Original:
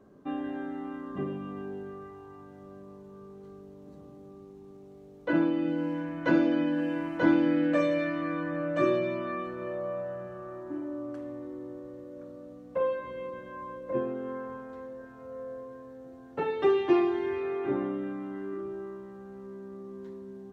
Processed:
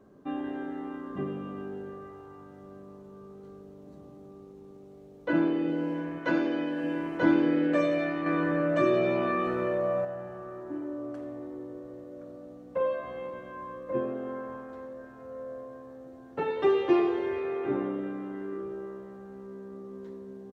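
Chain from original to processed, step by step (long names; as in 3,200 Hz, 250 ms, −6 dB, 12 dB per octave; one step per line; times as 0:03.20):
0:06.18–0:06.84: low-shelf EQ 320 Hz −7.5 dB
echo with shifted repeats 90 ms, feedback 52%, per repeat +71 Hz, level −16 dB
0:08.26–0:10.05: envelope flattener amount 50%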